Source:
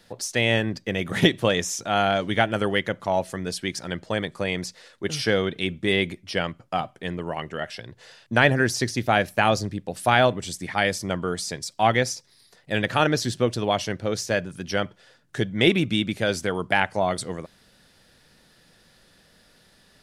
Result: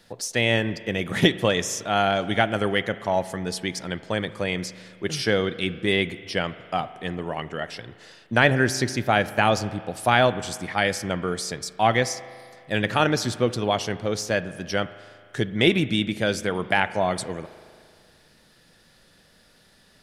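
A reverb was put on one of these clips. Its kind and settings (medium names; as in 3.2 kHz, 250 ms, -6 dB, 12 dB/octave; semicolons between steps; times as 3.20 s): spring tank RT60 2.2 s, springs 38 ms, chirp 75 ms, DRR 14.5 dB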